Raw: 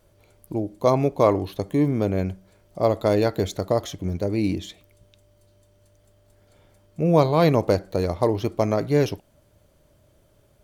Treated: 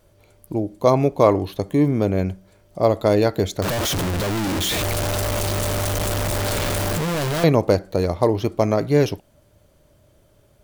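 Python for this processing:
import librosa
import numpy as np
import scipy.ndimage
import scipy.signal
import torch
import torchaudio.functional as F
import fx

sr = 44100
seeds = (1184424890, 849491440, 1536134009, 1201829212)

y = fx.clip_1bit(x, sr, at=(3.62, 7.44))
y = y * 10.0 ** (3.0 / 20.0)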